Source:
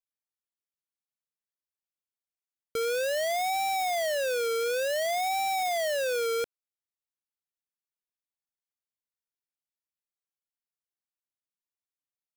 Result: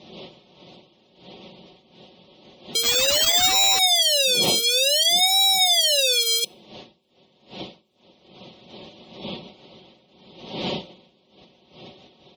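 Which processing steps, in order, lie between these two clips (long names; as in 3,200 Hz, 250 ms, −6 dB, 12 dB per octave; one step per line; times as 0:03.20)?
wind on the microphone 590 Hz −40 dBFS
high-pass filter 110 Hz 12 dB per octave
high shelf with overshoot 2,300 Hz +14 dB, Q 3
comb filter 5.4 ms, depth 50%
gate on every frequency bin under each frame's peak −25 dB strong
0:02.83–0:03.79: sample-rate reduction 11,000 Hz, jitter 0%
on a send: convolution reverb RT60 0.40 s, pre-delay 3 ms, DRR 23.5 dB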